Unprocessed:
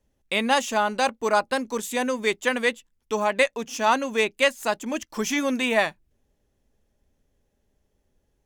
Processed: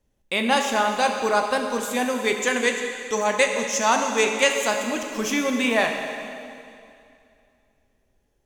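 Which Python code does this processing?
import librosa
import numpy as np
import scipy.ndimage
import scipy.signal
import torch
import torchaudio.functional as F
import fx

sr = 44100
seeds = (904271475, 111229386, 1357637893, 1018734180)

y = fx.peak_eq(x, sr, hz=6700.0, db=11.0, octaves=0.57, at=(2.4, 4.73))
y = fx.rev_plate(y, sr, seeds[0], rt60_s=2.5, hf_ratio=0.95, predelay_ms=0, drr_db=3.0)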